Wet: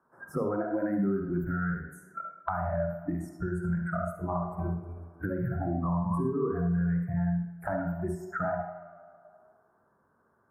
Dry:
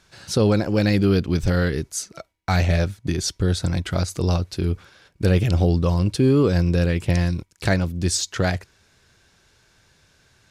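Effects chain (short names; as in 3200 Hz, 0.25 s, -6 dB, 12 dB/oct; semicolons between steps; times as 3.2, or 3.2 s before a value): 4.17–6.52 regenerating reverse delay 0.153 s, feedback 47%, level -5 dB; spectral noise reduction 28 dB; Chebyshev band-stop 1200–8400 Hz, order 3; low shelf 160 Hz -10.5 dB; compressor, threshold -25 dBFS, peak gain reduction 9 dB; HPF 47 Hz; de-hum 121.6 Hz, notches 6; tape echo 0.105 s, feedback 60%, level -17 dB, low-pass 3000 Hz; limiter -24.5 dBFS, peak gain reduction 8 dB; bell 8500 Hz -14 dB 1.1 oct; reverb RT60 0.50 s, pre-delay 45 ms, DRR 3 dB; three-band squash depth 70%; gain -4.5 dB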